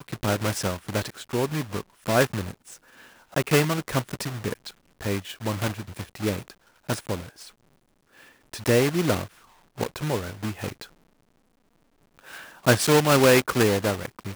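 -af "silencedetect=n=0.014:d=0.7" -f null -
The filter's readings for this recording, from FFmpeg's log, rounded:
silence_start: 7.47
silence_end: 8.53 | silence_duration: 1.06
silence_start: 10.85
silence_end: 12.19 | silence_duration: 1.34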